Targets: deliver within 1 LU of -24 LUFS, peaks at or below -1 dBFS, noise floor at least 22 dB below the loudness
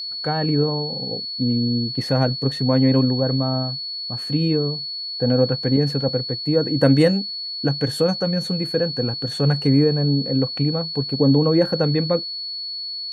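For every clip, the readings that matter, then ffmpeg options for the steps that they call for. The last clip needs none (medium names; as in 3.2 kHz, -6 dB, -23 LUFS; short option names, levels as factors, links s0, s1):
steady tone 4.4 kHz; tone level -27 dBFS; loudness -20.5 LUFS; peak level -4.0 dBFS; loudness target -24.0 LUFS
-> -af "bandreject=f=4400:w=30"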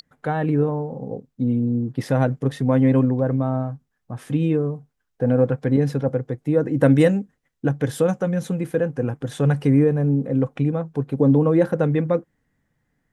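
steady tone not found; loudness -21.0 LUFS; peak level -4.5 dBFS; loudness target -24.0 LUFS
-> -af "volume=0.708"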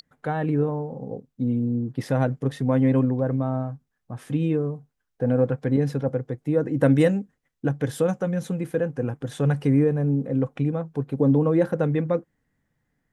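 loudness -24.0 LUFS; peak level -7.5 dBFS; noise floor -77 dBFS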